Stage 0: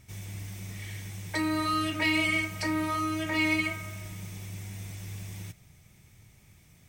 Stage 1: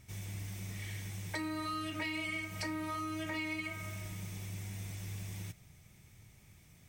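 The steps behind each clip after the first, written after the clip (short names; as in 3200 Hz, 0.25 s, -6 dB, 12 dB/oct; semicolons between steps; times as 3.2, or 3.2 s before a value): compressor 6:1, threshold -33 dBFS, peak gain reduction 10.5 dB; gain -2.5 dB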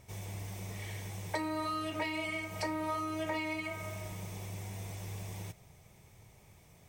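band shelf 650 Hz +9 dB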